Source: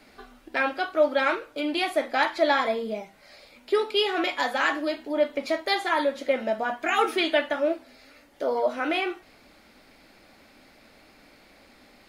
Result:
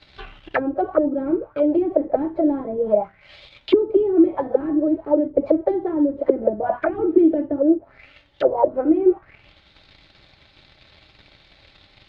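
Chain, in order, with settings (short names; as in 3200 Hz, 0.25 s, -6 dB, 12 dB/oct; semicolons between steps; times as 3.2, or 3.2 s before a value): resonant low shelf 170 Hz +10.5 dB, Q 1.5; sample leveller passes 2; notch comb 240 Hz; envelope low-pass 320–3900 Hz down, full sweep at -17.5 dBFS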